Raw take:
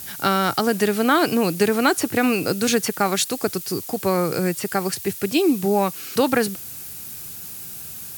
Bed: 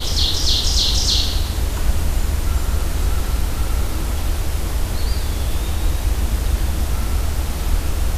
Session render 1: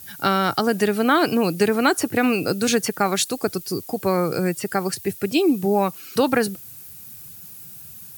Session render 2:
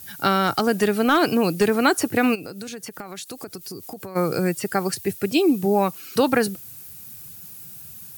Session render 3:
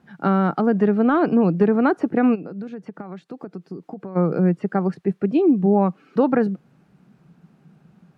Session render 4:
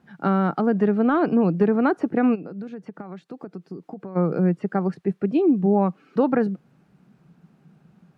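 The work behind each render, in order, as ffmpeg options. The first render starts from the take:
ffmpeg -i in.wav -af "afftdn=noise_reduction=9:noise_floor=-36" out.wav
ffmpeg -i in.wav -filter_complex "[0:a]asettb=1/sr,asplit=3[link_01][link_02][link_03];[link_01]atrim=end=0.474[link_04];[link_02]atrim=start=0.47:end=1.76,asetpts=PTS-STARTPTS,afade=type=in:duration=0.004:curve=qsin,afade=type=out:start_time=1.286:duration=0.004:curve=qsin,volume=10dB,asoftclip=hard,volume=-10dB[link_05];[link_03]atrim=start=1.756[link_06];[link_04][link_05]acrossfade=duration=0.004:curve1=hsin:curve2=qsin[link_07];[link_07][link_06]acrossfade=duration=0.004:curve1=qsin:curve2=hsin,asplit=3[link_08][link_09][link_10];[link_08]afade=type=out:start_time=2.34:duration=0.02[link_11];[link_09]acompressor=threshold=-31dB:ratio=10:attack=3.2:release=140:knee=1:detection=peak,afade=type=in:start_time=2.34:duration=0.02,afade=type=out:start_time=4.15:duration=0.02[link_12];[link_10]afade=type=in:start_time=4.15:duration=0.02[link_13];[link_11][link_12][link_13]amix=inputs=3:normalize=0" out.wav
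ffmpeg -i in.wav -af "lowpass=1200,lowshelf=frequency=130:width_type=q:width=3:gain=-9.5" out.wav
ffmpeg -i in.wav -af "volume=-2dB" out.wav

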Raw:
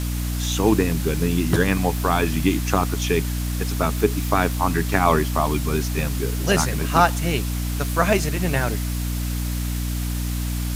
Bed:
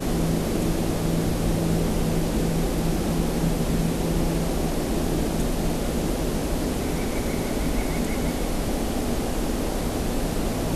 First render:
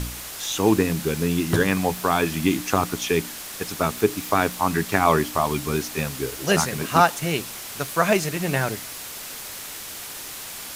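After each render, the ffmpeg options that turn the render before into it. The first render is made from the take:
ffmpeg -i in.wav -af "bandreject=frequency=60:width_type=h:width=4,bandreject=frequency=120:width_type=h:width=4,bandreject=frequency=180:width_type=h:width=4,bandreject=frequency=240:width_type=h:width=4,bandreject=frequency=300:width_type=h:width=4" out.wav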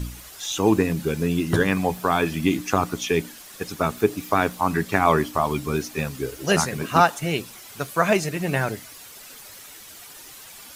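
ffmpeg -i in.wav -af "afftdn=noise_reduction=10:noise_floor=-36" out.wav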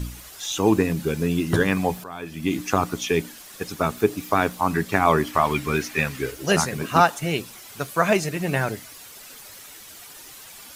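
ffmpeg -i in.wav -filter_complex "[0:a]asettb=1/sr,asplit=3[link_01][link_02][link_03];[link_01]atrim=end=5.274[link_04];[link_02]atrim=start=5.27:end=6.32,asetpts=PTS-STARTPTS,afade=type=in:duration=0.004:curve=qsin,afade=type=out:start_time=1.046:duration=0.004:curve=qsin,equalizer=frequency=2000:width=1.1:gain=10[link_05];[link_03]atrim=start=6.316[link_06];[link_04][link_05]acrossfade=duration=0.004:curve1=hsin:curve2=qsin[link_07];[link_07][link_06]acrossfade=duration=0.004:curve1=qsin:curve2=hsin,asplit=2[link_08][link_09];[link_08]atrim=end=2.04,asetpts=PTS-STARTPTS,afade=type=out:start_time=2.036:duration=0.004:curve=hsin:silence=0.149624[link_10];[link_09]atrim=start=2.04,asetpts=PTS-STARTPTS,afade=type=in:duration=0.56:curve=qua:silence=0.149624[link_11];[link_10][link_11]concat=n=2:v=0:a=1" out.wav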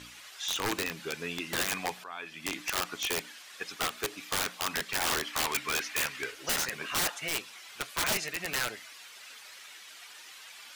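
ffmpeg -i in.wav -af "bandpass=frequency=2400:width_type=q:width=0.8:csg=0,aeval=exprs='(mod(13.3*val(0)+1,2)-1)/13.3':channel_layout=same" out.wav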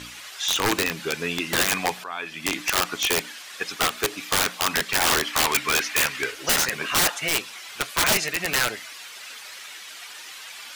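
ffmpeg -i in.wav -af "volume=9dB" out.wav

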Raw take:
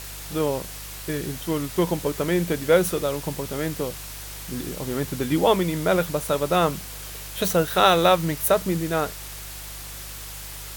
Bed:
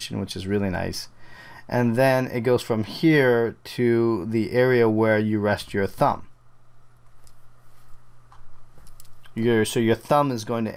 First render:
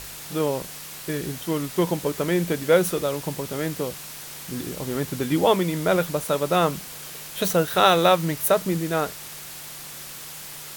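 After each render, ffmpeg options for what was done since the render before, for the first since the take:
ffmpeg -i in.wav -af "bandreject=frequency=50:width_type=h:width=4,bandreject=frequency=100:width_type=h:width=4" out.wav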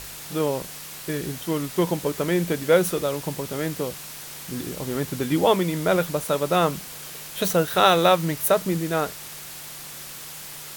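ffmpeg -i in.wav -af anull out.wav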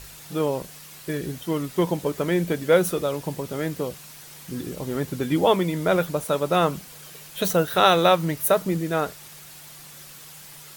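ffmpeg -i in.wav -af "afftdn=noise_reduction=7:noise_floor=-39" out.wav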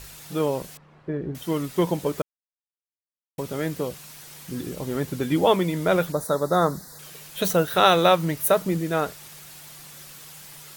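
ffmpeg -i in.wav -filter_complex "[0:a]asettb=1/sr,asplit=3[link_01][link_02][link_03];[link_01]atrim=end=0.774[link_04];[link_02]atrim=start=0.77:end=1.35,asetpts=PTS-STARTPTS,afade=type=in:duration=0.004:curve=qsin,afade=type=out:start_time=0.576:duration=0.004:curve=qsin,lowpass=1100[link_05];[link_03]atrim=start=1.346[link_06];[link_04][link_05]acrossfade=duration=0.004:curve1=hsin:curve2=qsin[link_07];[link_07][link_06]acrossfade=duration=0.004:curve1=qsin:curve2=hsin,asettb=1/sr,asplit=3[link_08][link_09][link_10];[link_08]atrim=end=6.124[link_11];[link_09]atrim=start=6.12:end=6.99,asetpts=PTS-STARTPTS,afade=type=in:duration=0.004:curve=qsin,afade=type=out:start_time=0.866:duration=0.004:curve=qsin,asuperstop=centerf=2700:order=8:qfactor=1.5[link_12];[link_10]atrim=start=6.986[link_13];[link_11][link_12]acrossfade=duration=0.004:curve1=hsin:curve2=qsin[link_14];[link_14][link_13]acrossfade=duration=0.004:curve1=qsin:curve2=hsin,asplit=3[link_15][link_16][link_17];[link_15]atrim=end=2.22,asetpts=PTS-STARTPTS,afade=type=out:start_time=2.216:duration=0.004:curve=hsin[link_18];[link_16]atrim=start=2.22:end=3.38,asetpts=PTS-STARTPTS,volume=0[link_19];[link_17]atrim=start=3.38,asetpts=PTS-STARTPTS,afade=type=in:duration=0.004:curve=hsin[link_20];[link_18][link_19][link_20]concat=n=3:v=0:a=1" out.wav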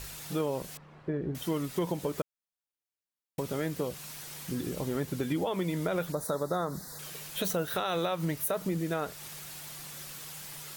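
ffmpeg -i in.wav -af "alimiter=limit=-15dB:level=0:latency=1:release=92,acompressor=threshold=-32dB:ratio=2" out.wav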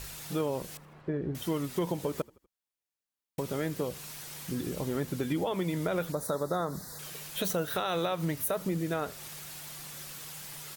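ffmpeg -i in.wav -filter_complex "[0:a]asplit=4[link_01][link_02][link_03][link_04];[link_02]adelay=81,afreqshift=-37,volume=-23.5dB[link_05];[link_03]adelay=162,afreqshift=-74,volume=-29.9dB[link_06];[link_04]adelay=243,afreqshift=-111,volume=-36.3dB[link_07];[link_01][link_05][link_06][link_07]amix=inputs=4:normalize=0" out.wav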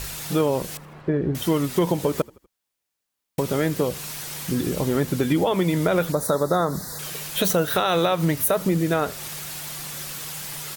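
ffmpeg -i in.wav -af "volume=10dB" out.wav

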